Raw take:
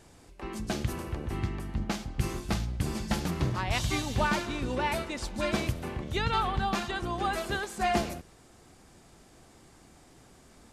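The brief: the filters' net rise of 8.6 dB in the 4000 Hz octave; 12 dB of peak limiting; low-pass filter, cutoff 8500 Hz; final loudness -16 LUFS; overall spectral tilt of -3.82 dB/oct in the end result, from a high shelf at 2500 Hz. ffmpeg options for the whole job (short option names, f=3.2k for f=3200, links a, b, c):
-af "lowpass=8.5k,highshelf=f=2.5k:g=5,equalizer=f=4k:t=o:g=6.5,volume=17dB,alimiter=limit=-6dB:level=0:latency=1"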